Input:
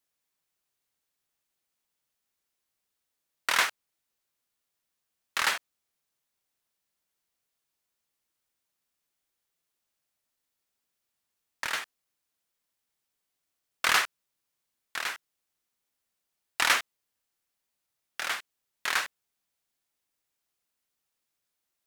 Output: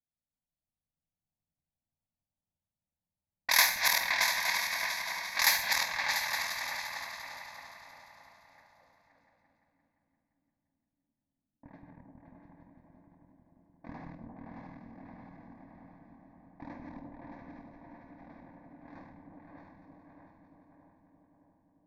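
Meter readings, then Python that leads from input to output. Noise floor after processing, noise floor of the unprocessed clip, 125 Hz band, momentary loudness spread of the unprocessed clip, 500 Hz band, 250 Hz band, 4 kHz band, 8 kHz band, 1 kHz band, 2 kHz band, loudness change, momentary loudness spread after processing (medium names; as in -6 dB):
under -85 dBFS, -83 dBFS, no reading, 16 LU, -1.0 dB, +8.0 dB, +0.5 dB, +2.0 dB, -2.5 dB, -0.5 dB, +0.5 dB, 24 LU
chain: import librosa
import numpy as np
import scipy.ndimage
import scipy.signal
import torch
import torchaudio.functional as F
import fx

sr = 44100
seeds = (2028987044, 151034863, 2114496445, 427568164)

y = fx.reverse_delay_fb(x, sr, ms=311, feedback_pct=78, wet_db=-3.5)
y = fx.env_lowpass(y, sr, base_hz=370.0, full_db=-24.0)
y = fx.high_shelf(y, sr, hz=5000.0, db=11.0)
y = fx.fixed_phaser(y, sr, hz=2000.0, stages=8)
y = fx.filter_sweep_lowpass(y, sr, from_hz=12000.0, to_hz=290.0, start_s=8.23, end_s=8.97, q=3.5)
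y = fx.doubler(y, sr, ms=49.0, db=-12)
y = fx.echo_opening(y, sr, ms=173, hz=200, octaves=2, feedback_pct=70, wet_db=0)
y = fx.rev_gated(y, sr, seeds[0], gate_ms=150, shape='flat', drr_db=8.5)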